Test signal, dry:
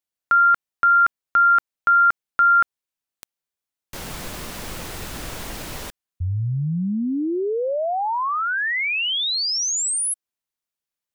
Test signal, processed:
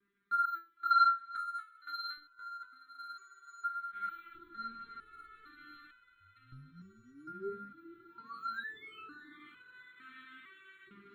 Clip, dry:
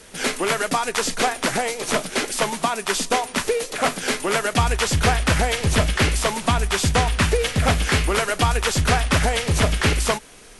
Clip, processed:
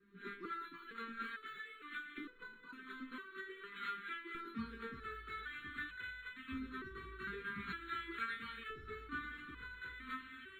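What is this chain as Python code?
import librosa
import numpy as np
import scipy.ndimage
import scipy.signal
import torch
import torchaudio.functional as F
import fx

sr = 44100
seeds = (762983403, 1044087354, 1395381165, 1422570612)

y = fx.echo_diffused(x, sr, ms=620, feedback_pct=78, wet_db=-11.0)
y = fx.dmg_crackle(y, sr, seeds[0], per_s=340.0, level_db=-34.0)
y = fx.hum_notches(y, sr, base_hz=50, count=2)
y = fx.chorus_voices(y, sr, voices=4, hz=0.55, base_ms=19, depth_ms=4.1, mix_pct=40)
y = fx.filter_lfo_bandpass(y, sr, shape='saw_up', hz=0.46, low_hz=610.0, high_hz=2400.0, q=1.0)
y = scipy.signal.sosfilt(scipy.signal.cheby1(3, 1.0, [360.0, 1300.0], 'bandstop', fs=sr, output='sos'), y)
y = fx.low_shelf(y, sr, hz=140.0, db=10.0)
y = np.repeat(scipy.signal.resample_poly(y, 1, 8), 8)[:len(y)]
y = fx.air_absorb(y, sr, metres=460.0)
y = fx.resonator_held(y, sr, hz=2.2, low_hz=200.0, high_hz=500.0)
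y = y * 10.0 ** (5.5 / 20.0)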